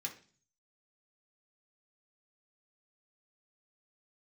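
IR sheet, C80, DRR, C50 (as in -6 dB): 16.5 dB, -1.0 dB, 11.5 dB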